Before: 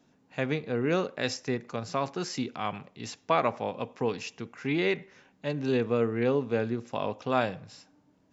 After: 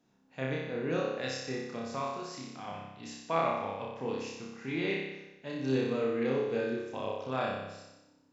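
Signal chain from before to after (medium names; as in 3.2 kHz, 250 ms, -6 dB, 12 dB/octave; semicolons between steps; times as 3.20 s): 2.11–2.68 s: compression 3:1, threshold -36 dBFS, peak gain reduction 8 dB; 5.52–6.81 s: treble shelf 4.4 kHz +9 dB; flutter echo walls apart 5.2 m, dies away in 1 s; trim -9 dB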